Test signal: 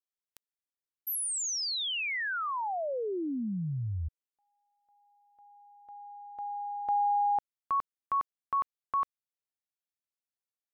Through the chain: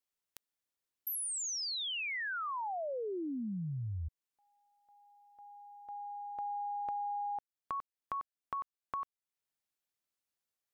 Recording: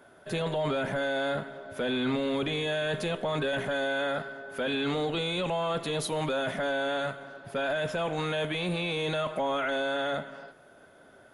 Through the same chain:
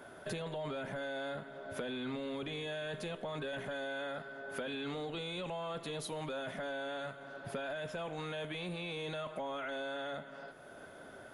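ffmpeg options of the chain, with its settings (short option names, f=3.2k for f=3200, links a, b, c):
-af "acompressor=threshold=-39dB:ratio=12:attack=7.8:release=872:knee=6:detection=peak,volume=3.5dB"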